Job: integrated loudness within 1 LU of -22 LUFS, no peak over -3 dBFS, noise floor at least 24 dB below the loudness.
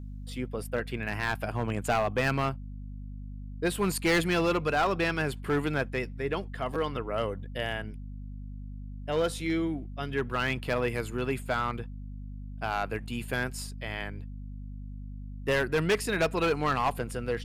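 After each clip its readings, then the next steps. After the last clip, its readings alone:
clipped samples 1.1%; clipping level -20.5 dBFS; hum 50 Hz; highest harmonic 250 Hz; hum level -38 dBFS; loudness -30.0 LUFS; peak level -20.5 dBFS; loudness target -22.0 LUFS
-> clip repair -20.5 dBFS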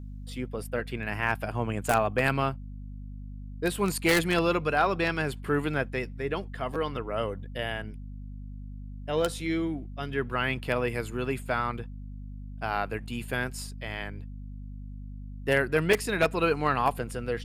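clipped samples 0.0%; hum 50 Hz; highest harmonic 250 Hz; hum level -37 dBFS
-> de-hum 50 Hz, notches 5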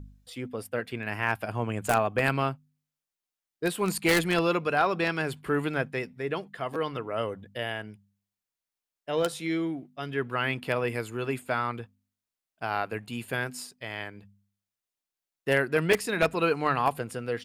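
hum not found; loudness -29.0 LUFS; peak level -11.0 dBFS; loudness target -22.0 LUFS
-> trim +7 dB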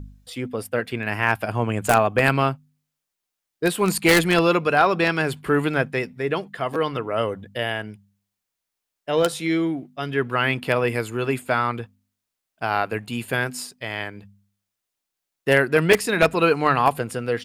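loudness -22.0 LUFS; peak level -4.0 dBFS; noise floor -83 dBFS

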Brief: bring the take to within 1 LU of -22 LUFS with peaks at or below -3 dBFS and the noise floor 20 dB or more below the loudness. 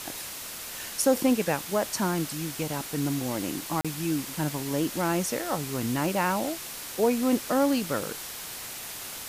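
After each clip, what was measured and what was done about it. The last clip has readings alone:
dropouts 1; longest dropout 36 ms; noise floor -39 dBFS; noise floor target -49 dBFS; loudness -28.5 LUFS; peak level -11.0 dBFS; loudness target -22.0 LUFS
-> interpolate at 3.81 s, 36 ms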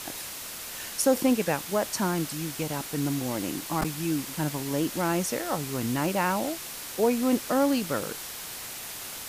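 dropouts 0; noise floor -39 dBFS; noise floor target -49 dBFS
-> noise print and reduce 10 dB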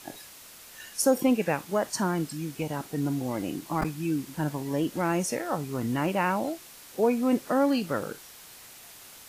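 noise floor -49 dBFS; loudness -28.5 LUFS; peak level -11.5 dBFS; loudness target -22.0 LUFS
-> trim +6.5 dB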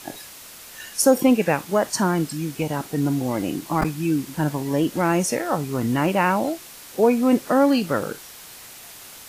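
loudness -22.0 LUFS; peak level -5.0 dBFS; noise floor -42 dBFS

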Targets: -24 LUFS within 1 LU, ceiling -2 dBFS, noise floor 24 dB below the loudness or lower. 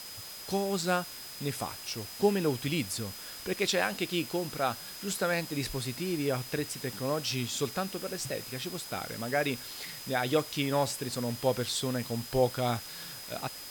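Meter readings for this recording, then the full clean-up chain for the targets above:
steady tone 5 kHz; tone level -46 dBFS; noise floor -44 dBFS; noise floor target -56 dBFS; loudness -32.0 LUFS; peak level -12.5 dBFS; loudness target -24.0 LUFS
-> band-stop 5 kHz, Q 30; noise print and reduce 12 dB; trim +8 dB

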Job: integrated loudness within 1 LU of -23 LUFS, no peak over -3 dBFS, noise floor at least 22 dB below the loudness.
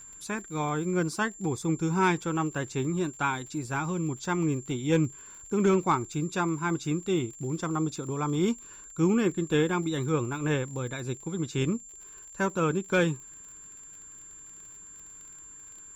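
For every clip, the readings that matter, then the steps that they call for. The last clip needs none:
tick rate 48 per s; steady tone 7.3 kHz; tone level -45 dBFS; loudness -29.0 LUFS; peak level -13.5 dBFS; loudness target -23.0 LUFS
-> de-click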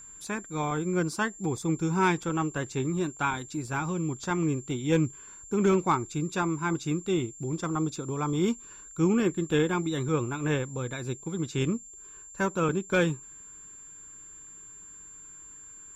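tick rate 0.19 per s; steady tone 7.3 kHz; tone level -45 dBFS
-> band-stop 7.3 kHz, Q 30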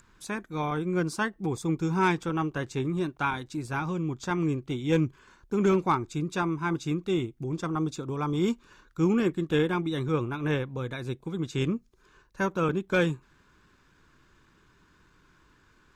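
steady tone not found; loudness -29.0 LUFS; peak level -14.0 dBFS; loudness target -23.0 LUFS
-> trim +6 dB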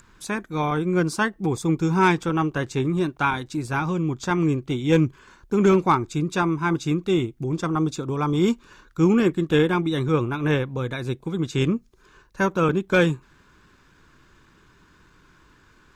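loudness -23.0 LUFS; peak level -8.0 dBFS; noise floor -57 dBFS

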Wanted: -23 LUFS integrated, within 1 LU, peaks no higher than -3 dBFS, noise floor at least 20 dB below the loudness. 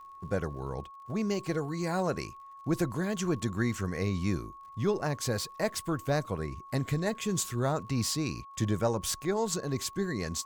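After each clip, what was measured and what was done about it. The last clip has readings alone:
tick rate 40 per s; steady tone 1.1 kHz; tone level -46 dBFS; loudness -32.0 LUFS; peak level -17.0 dBFS; loudness target -23.0 LUFS
-> de-click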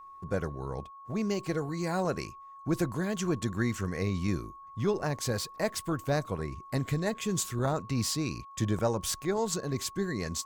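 tick rate 1.2 per s; steady tone 1.1 kHz; tone level -46 dBFS
-> band-stop 1.1 kHz, Q 30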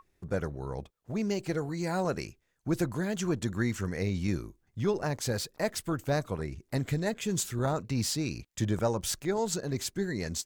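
steady tone not found; loudness -32.0 LUFS; peak level -17.0 dBFS; loudness target -23.0 LUFS
-> trim +9 dB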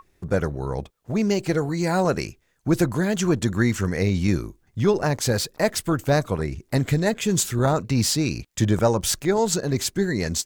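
loudness -23.0 LUFS; peak level -8.0 dBFS; noise floor -65 dBFS

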